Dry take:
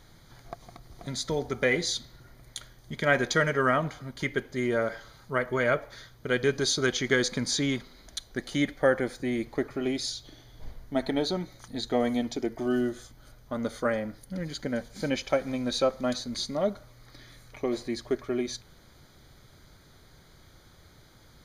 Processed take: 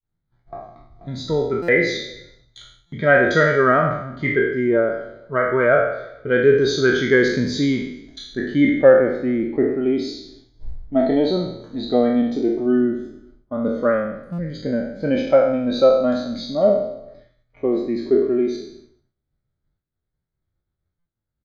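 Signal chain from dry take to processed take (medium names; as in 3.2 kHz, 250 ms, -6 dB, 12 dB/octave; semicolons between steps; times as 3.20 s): spectral sustain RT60 1.13 s; in parallel at -5.5 dB: saturation -19 dBFS, distortion -14 dB; on the sum: distance through air 83 m; delay 438 ms -23.5 dB; expander -38 dBFS; treble shelf 8.2 kHz -8 dB; buffer glitch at 1.62/2.86/14.32/20.99 s, samples 256, times 10; spectral contrast expander 1.5:1; trim +6 dB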